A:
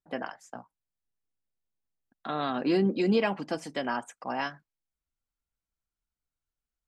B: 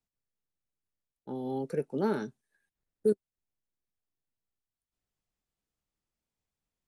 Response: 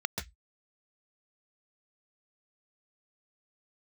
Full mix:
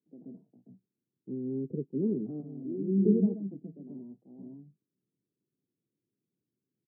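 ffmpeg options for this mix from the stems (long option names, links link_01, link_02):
-filter_complex "[0:a]volume=0.5dB,asplit=2[link_01][link_02];[link_02]volume=-11.5dB[link_03];[1:a]highshelf=frequency=6200:gain=11,acrusher=samples=24:mix=1:aa=0.000001,volume=2.5dB,asplit=2[link_04][link_05];[link_05]apad=whole_len=307411[link_06];[link_01][link_06]sidechaingate=range=-33dB:threshold=-51dB:ratio=16:detection=peak[link_07];[2:a]atrim=start_sample=2205[link_08];[link_03][link_08]afir=irnorm=-1:irlink=0[link_09];[link_07][link_04][link_09]amix=inputs=3:normalize=0,asuperpass=centerf=210:order=8:qfactor=0.76"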